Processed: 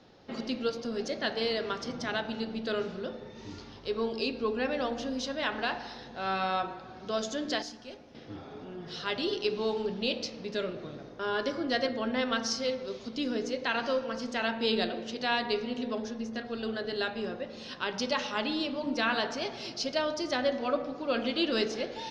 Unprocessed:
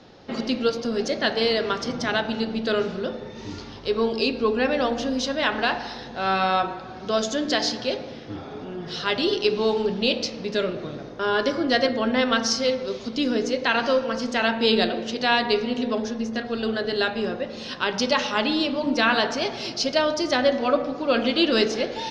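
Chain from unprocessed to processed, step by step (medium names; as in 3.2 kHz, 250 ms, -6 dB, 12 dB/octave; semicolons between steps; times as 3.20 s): 7.62–8.15 s: graphic EQ 125/250/500/1000/2000/4000 Hz -11/-3/-11/-4/-6/-12 dB; trim -8.5 dB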